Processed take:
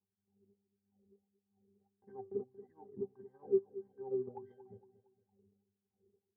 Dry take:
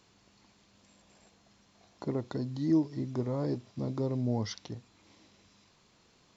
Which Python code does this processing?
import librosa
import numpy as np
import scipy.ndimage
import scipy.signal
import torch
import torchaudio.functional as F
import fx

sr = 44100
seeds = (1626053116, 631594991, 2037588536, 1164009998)

y = fx.env_lowpass(x, sr, base_hz=430.0, full_db=-26.5)
y = fx.tilt_eq(y, sr, slope=-4.0)
y = fx.octave_resonator(y, sr, note='G', decay_s=0.2)
y = fx.wah_lfo(y, sr, hz=1.6, low_hz=370.0, high_hz=2000.0, q=7.1)
y = fx.transient(y, sr, attack_db=3, sustain_db=-8)
y = fx.echo_feedback(y, sr, ms=230, feedback_pct=41, wet_db=-15.0)
y = F.gain(torch.from_numpy(y), 9.5).numpy()